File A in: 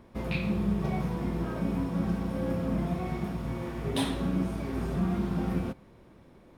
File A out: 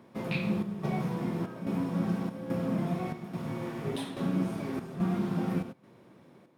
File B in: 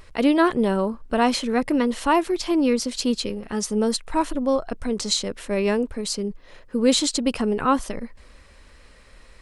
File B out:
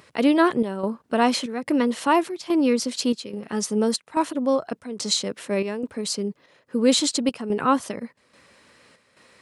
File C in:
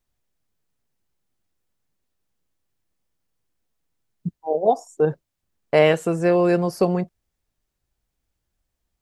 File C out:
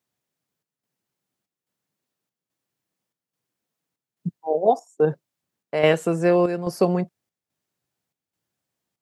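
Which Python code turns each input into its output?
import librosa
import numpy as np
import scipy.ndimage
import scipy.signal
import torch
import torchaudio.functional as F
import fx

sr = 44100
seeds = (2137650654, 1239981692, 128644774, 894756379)

y = scipy.signal.sosfilt(scipy.signal.butter(4, 120.0, 'highpass', fs=sr, output='sos'), x)
y = fx.chopper(y, sr, hz=1.2, depth_pct=60, duty_pct=75)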